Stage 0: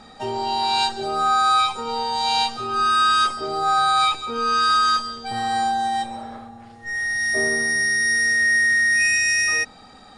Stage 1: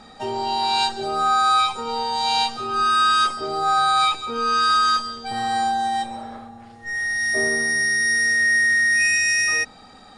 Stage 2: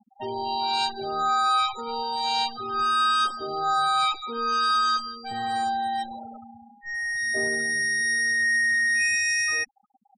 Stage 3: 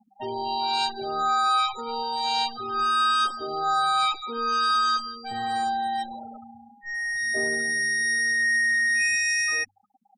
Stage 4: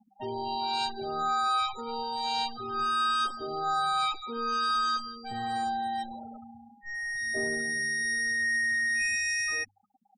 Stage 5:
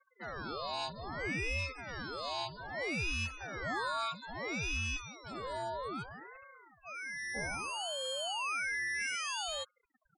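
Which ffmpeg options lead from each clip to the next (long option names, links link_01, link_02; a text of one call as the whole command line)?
ffmpeg -i in.wav -af "bandreject=frequency=60:width_type=h:width=6,bandreject=frequency=120:width_type=h:width=6" out.wav
ffmpeg -i in.wav -af "afftfilt=real='re*gte(hypot(re,im),0.0355)':imag='im*gte(hypot(re,im),0.0355)':win_size=1024:overlap=0.75,volume=-4.5dB" out.wav
ffmpeg -i in.wav -af "bandreject=frequency=50:width_type=h:width=6,bandreject=frequency=100:width_type=h:width=6,bandreject=frequency=150:width_type=h:width=6,bandreject=frequency=200:width_type=h:width=6" out.wav
ffmpeg -i in.wav -af "lowshelf=frequency=290:gain=7.5,volume=-5.5dB" out.wav
ffmpeg -i in.wav -af "aeval=exprs='val(0)*sin(2*PI*730*n/s+730*0.85/0.62*sin(2*PI*0.62*n/s))':channel_layout=same,volume=-5dB" out.wav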